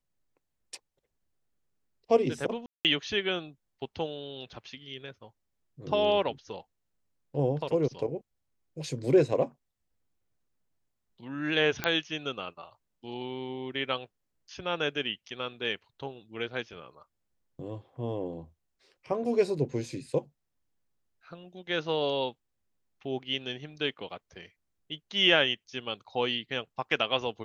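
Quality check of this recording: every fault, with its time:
0:02.66–0:02.85: drop-out 188 ms
0:11.84: click −12 dBFS

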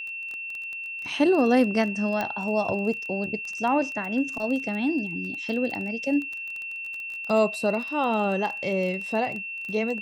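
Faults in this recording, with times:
surface crackle 16 per second −30 dBFS
whistle 2,700 Hz −32 dBFS
0:02.21: click −14 dBFS

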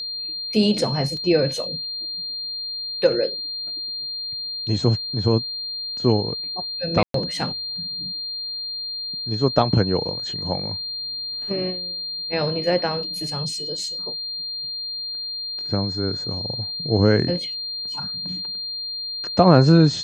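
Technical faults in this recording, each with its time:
whistle 4,200 Hz −27 dBFS
0:01.17: drop-out 2.2 ms
0:07.03–0:07.14: drop-out 113 ms

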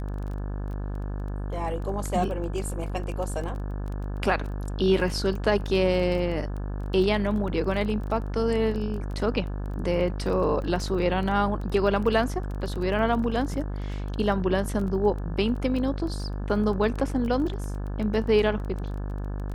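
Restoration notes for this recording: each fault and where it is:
mains buzz 50 Hz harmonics 35 −31 dBFS
surface crackle 15 per second −32 dBFS

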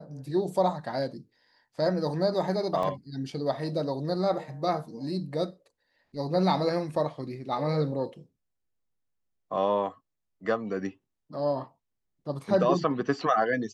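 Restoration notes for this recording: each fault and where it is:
0:02.83: drop-out 2.3 ms

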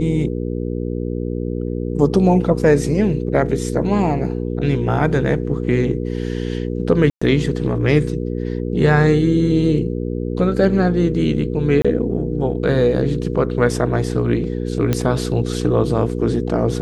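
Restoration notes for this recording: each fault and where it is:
mains hum 60 Hz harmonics 8 −23 dBFS
0:07.10–0:07.21: drop-out 115 ms
0:11.82–0:11.85: drop-out 26 ms
0:14.93: click −5 dBFS

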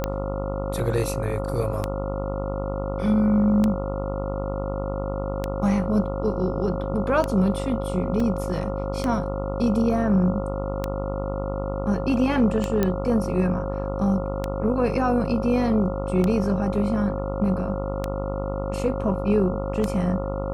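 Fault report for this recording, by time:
mains buzz 50 Hz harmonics 28 −29 dBFS
scratch tick 33 1/3 rpm −11 dBFS
whistle 540 Hz −30 dBFS
0:08.20: drop-out 3.2 ms
0:12.83: click −9 dBFS

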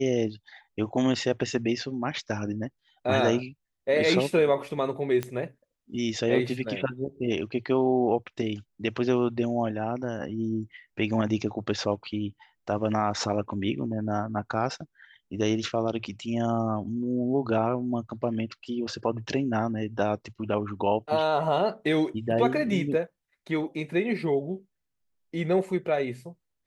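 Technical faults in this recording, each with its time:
0:05.23: click −16 dBFS

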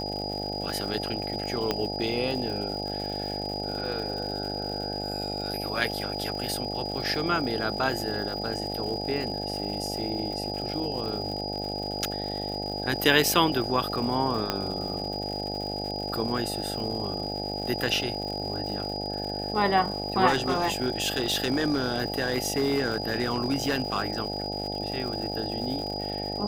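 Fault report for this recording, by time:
mains buzz 50 Hz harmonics 17 −34 dBFS
surface crackle 200 per second −35 dBFS
whistle 4,900 Hz −34 dBFS
0:01.71: click −11 dBFS
0:14.50: click −10 dBFS
0:20.27–0:24.10: clipping −19.5 dBFS

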